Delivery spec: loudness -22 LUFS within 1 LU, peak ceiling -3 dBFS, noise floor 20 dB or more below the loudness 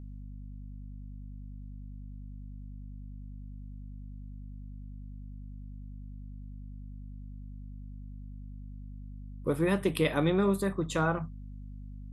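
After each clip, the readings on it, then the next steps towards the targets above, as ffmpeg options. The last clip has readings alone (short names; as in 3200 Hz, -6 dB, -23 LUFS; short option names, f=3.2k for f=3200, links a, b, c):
hum 50 Hz; harmonics up to 250 Hz; hum level -41 dBFS; loudness -29.5 LUFS; peak -14.0 dBFS; loudness target -22.0 LUFS
-> -af "bandreject=f=50:t=h:w=6,bandreject=f=100:t=h:w=6,bandreject=f=150:t=h:w=6,bandreject=f=200:t=h:w=6,bandreject=f=250:t=h:w=6"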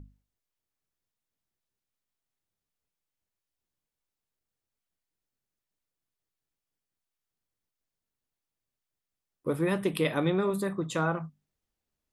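hum none; loudness -29.5 LUFS; peak -14.0 dBFS; loudness target -22.0 LUFS
-> -af "volume=7.5dB"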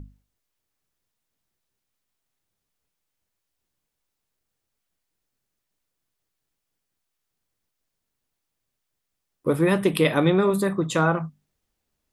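loudness -22.0 LUFS; peak -6.5 dBFS; noise floor -81 dBFS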